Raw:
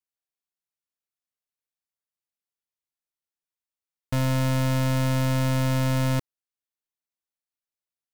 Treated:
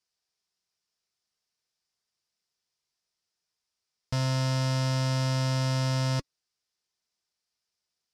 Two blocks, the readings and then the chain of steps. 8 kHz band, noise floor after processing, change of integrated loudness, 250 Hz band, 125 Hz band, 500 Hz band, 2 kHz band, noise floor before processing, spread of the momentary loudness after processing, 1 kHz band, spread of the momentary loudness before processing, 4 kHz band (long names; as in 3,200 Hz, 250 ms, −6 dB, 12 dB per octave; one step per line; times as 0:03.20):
−2.0 dB, below −85 dBFS, −3.5 dB, −7.0 dB, −3.0 dB, −4.0 dB, −4.0 dB, below −85 dBFS, 3 LU, −3.0 dB, 4 LU, +1.5 dB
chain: low-pass filter 8,600 Hz 12 dB per octave
parametric band 5,100 Hz +11 dB 0.55 octaves
brickwall limiter −28 dBFS, peak gain reduction 11.5 dB
notch comb filter 280 Hz
level +8.5 dB